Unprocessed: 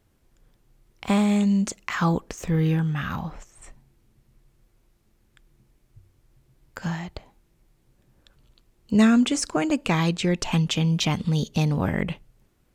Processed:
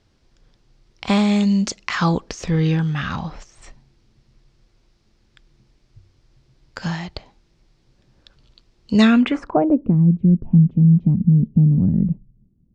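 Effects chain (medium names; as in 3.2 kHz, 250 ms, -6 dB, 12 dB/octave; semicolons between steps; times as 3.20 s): low-pass sweep 5 kHz -> 200 Hz, 8.99–9.98 s; trim +3.5 dB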